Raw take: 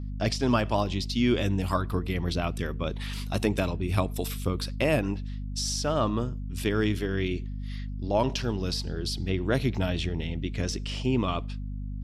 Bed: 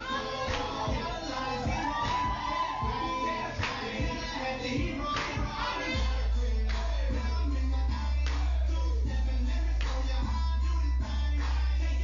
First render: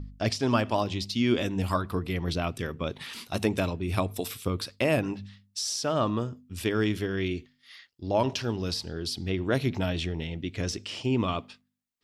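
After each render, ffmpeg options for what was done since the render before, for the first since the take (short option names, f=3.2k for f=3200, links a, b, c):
-af "bandreject=f=50:t=h:w=4,bandreject=f=100:t=h:w=4,bandreject=f=150:t=h:w=4,bandreject=f=200:t=h:w=4,bandreject=f=250:t=h:w=4"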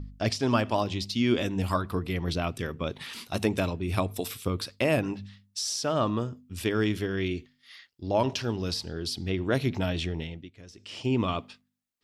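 -filter_complex "[0:a]asplit=3[a][b][c];[a]atrim=end=10.51,asetpts=PTS-STARTPTS,afade=t=out:st=10.18:d=0.33:silence=0.125893[d];[b]atrim=start=10.51:end=10.74,asetpts=PTS-STARTPTS,volume=-18dB[e];[c]atrim=start=10.74,asetpts=PTS-STARTPTS,afade=t=in:d=0.33:silence=0.125893[f];[d][e][f]concat=n=3:v=0:a=1"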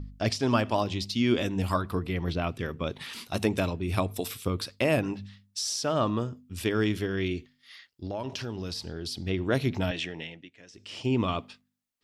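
-filter_complex "[0:a]asettb=1/sr,asplit=3[a][b][c];[a]atrim=end=2.054[d];[b]atrim=start=2.05:end=2.72,asetpts=PTS-STARTPTS,afade=t=in:d=0.004:c=qsin,afade=t=out:st=0.666:d=0.004:c=qsin,acrossover=split=3700[e][f];[f]acompressor=threshold=-51dB:ratio=4:attack=1:release=60[g];[e][g]amix=inputs=2:normalize=0[h];[c]atrim=start=2.716[i];[d][h]acrossfade=d=0.004:c1=hsin:c2=qsin[j];[j][i]acrossfade=d=0.004:c1=qsin:c2=hsin,asettb=1/sr,asplit=3[k][l][m];[k]atrim=end=8.064[n];[l]atrim=start=8.06:end=9.27,asetpts=PTS-STARTPTS,afade=t=in:d=0.004:c=qsin,afade=t=out:st=1.206:d=0.004:c=qsin,acompressor=threshold=-31dB:ratio=4:attack=3.2:release=140:knee=1:detection=peak[o];[m]atrim=start=9.266[p];[n][o]acrossfade=d=0.004:c1=hsin:c2=qsin[q];[q][p]acrossfade=d=0.004:c1=qsin:c2=hsin,asettb=1/sr,asplit=3[r][s][t];[r]atrim=end=9.914[u];[s]atrim=start=9.91:end=10.74,asetpts=PTS-STARTPTS,afade=t=in:d=0.004:c=qsin,afade=t=out:st=0.826:d=0.004:c=qsin,highpass=230,equalizer=f=230:t=q:w=4:g=-4,equalizer=f=380:t=q:w=4:g=-6,equalizer=f=1.2k:t=q:w=4:g=-3,equalizer=f=1.8k:t=q:w=4:g=6,equalizer=f=2.7k:t=q:w=4:g=4,equalizer=f=4.3k:t=q:w=4:g=-4,lowpass=f=8.8k:w=0.5412,lowpass=f=8.8k:w=1.3066[v];[t]atrim=start=10.736[w];[u][v]acrossfade=d=0.004:c1=hsin:c2=qsin[x];[x][w]acrossfade=d=0.004:c1=qsin:c2=hsin"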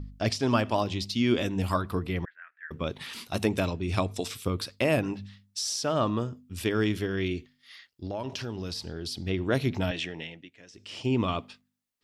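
-filter_complex "[0:a]asettb=1/sr,asplit=3[a][b][c];[a]atrim=end=2.254[d];[b]atrim=start=2.25:end=2.71,asetpts=PTS-STARTPTS,afade=t=in:d=0.004:c=qsin,afade=t=out:st=0.456:d=0.004:c=qsin,asuperpass=centerf=1700:order=4:qfactor=4.7[e];[c]atrim=start=2.706[f];[d][e]acrossfade=d=0.004:c1=hsin:c2=qsin[g];[g][f]acrossfade=d=0.004:c1=qsin:c2=hsin,asettb=1/sr,asplit=3[h][i][j];[h]atrim=end=3.654[k];[i]atrim=start=3.65:end=4.35,asetpts=PTS-STARTPTS,afade=t=in:d=0.004:c=qsin,afade=t=out:st=0.696:d=0.004:c=qsin,lowpass=f=6.7k:t=q:w=1.6[l];[j]atrim=start=4.346[m];[k][l]acrossfade=d=0.004:c1=hsin:c2=qsin[n];[n][m]acrossfade=d=0.004:c1=qsin:c2=hsin"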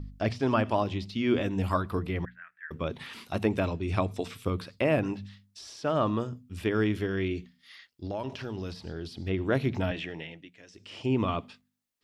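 -filter_complex "[0:a]acrossover=split=2900[a][b];[b]acompressor=threshold=-51dB:ratio=4:attack=1:release=60[c];[a][c]amix=inputs=2:normalize=0,bandreject=f=60:t=h:w=6,bandreject=f=120:t=h:w=6,bandreject=f=180:t=h:w=6,bandreject=f=240:t=h:w=6"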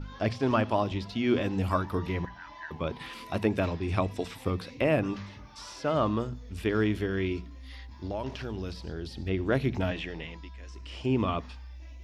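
-filter_complex "[1:a]volume=-16.5dB[a];[0:a][a]amix=inputs=2:normalize=0"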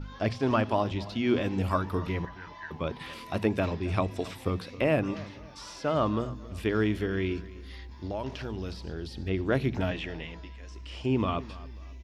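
-filter_complex "[0:a]asplit=2[a][b];[b]adelay=270,lowpass=f=4.8k:p=1,volume=-18.5dB,asplit=2[c][d];[d]adelay=270,lowpass=f=4.8k:p=1,volume=0.36,asplit=2[e][f];[f]adelay=270,lowpass=f=4.8k:p=1,volume=0.36[g];[a][c][e][g]amix=inputs=4:normalize=0"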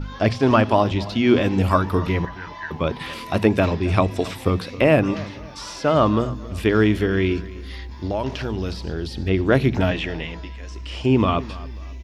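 -af "volume=9.5dB"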